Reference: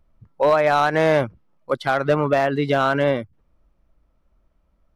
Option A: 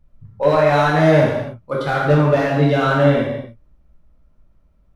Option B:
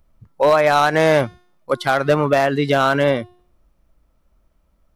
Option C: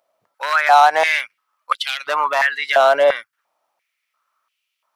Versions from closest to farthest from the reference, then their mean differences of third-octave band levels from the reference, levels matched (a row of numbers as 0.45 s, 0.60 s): B, A, C; 2.0 dB, 5.5 dB, 11.0 dB